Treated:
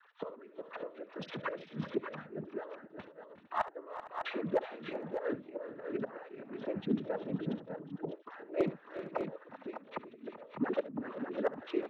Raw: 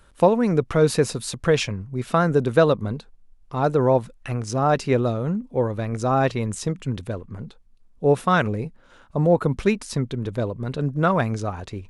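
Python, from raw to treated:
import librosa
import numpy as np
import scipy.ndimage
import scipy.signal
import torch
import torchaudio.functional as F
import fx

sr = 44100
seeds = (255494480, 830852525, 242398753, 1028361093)

y = fx.sine_speech(x, sr)
y = fx.graphic_eq_10(y, sr, hz=(500, 1000, 2000), db=(-5, -4, -12), at=(6.54, 7.39))
y = fx.gate_flip(y, sr, shuts_db=-23.0, range_db=-30)
y = fx.noise_vocoder(y, sr, seeds[0], bands=12)
y = np.clip(10.0 ** (22.0 / 20.0) * y, -1.0, 1.0) / 10.0 ** (22.0 / 20.0)
y = fx.echo_multitap(y, sr, ms=(70, 359, 385, 457, 576, 601), db=(-16.0, -18.0, -13.0, -19.0, -16.0, -7.5))
y = F.gain(torch.from_numpy(y), 1.0).numpy()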